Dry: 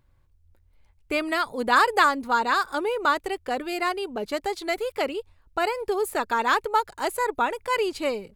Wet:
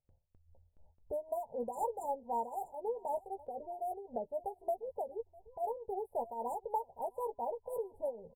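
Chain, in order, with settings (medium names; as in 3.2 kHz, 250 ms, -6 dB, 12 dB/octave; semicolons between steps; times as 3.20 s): local Wiener filter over 25 samples; static phaser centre 1.6 kHz, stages 8; doubling 13 ms -7 dB; in parallel at -8 dB: sine folder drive 9 dB, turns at -9.5 dBFS; on the sum: FFT band-reject 1–7.1 kHz; compression 1.5:1, threshold -47 dBFS, peak gain reduction 11.5 dB; gate with hold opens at -45 dBFS; bass shelf 190 Hz -9.5 dB; delay 651 ms -20 dB; tremolo triangle 3.9 Hz, depth 75%; trim -1 dB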